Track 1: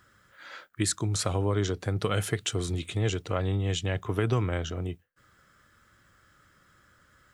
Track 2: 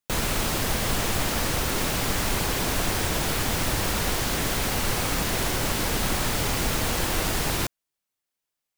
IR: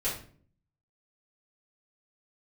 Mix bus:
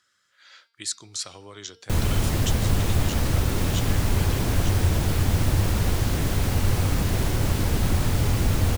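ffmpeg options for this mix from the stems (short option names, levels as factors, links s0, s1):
-filter_complex "[0:a]bandpass=f=5200:t=q:w=1.1:csg=0,volume=1.33[s0];[1:a]equalizer=f=91:t=o:w=0.49:g=9.5,adelay=1800,volume=0.531[s1];[s0][s1]amix=inputs=2:normalize=0,lowshelf=f=390:g=11,bandreject=f=229.3:t=h:w=4,bandreject=f=458.6:t=h:w=4,bandreject=f=687.9:t=h:w=4,bandreject=f=917.2:t=h:w=4,bandreject=f=1146.5:t=h:w=4,bandreject=f=1375.8:t=h:w=4,bandreject=f=1605.1:t=h:w=4,bandreject=f=1834.4:t=h:w=4,bandreject=f=2063.7:t=h:w=4,bandreject=f=2293:t=h:w=4,bandreject=f=2522.3:t=h:w=4,bandreject=f=2751.6:t=h:w=4,bandreject=f=2980.9:t=h:w=4,bandreject=f=3210.2:t=h:w=4,bandreject=f=3439.5:t=h:w=4,bandreject=f=3668.8:t=h:w=4,bandreject=f=3898.1:t=h:w=4,bandreject=f=4127.4:t=h:w=4,bandreject=f=4356.7:t=h:w=4,bandreject=f=4586:t=h:w=4,bandreject=f=4815.3:t=h:w=4,bandreject=f=5044.6:t=h:w=4,bandreject=f=5273.9:t=h:w=4,bandreject=f=5503.2:t=h:w=4,bandreject=f=5732.5:t=h:w=4"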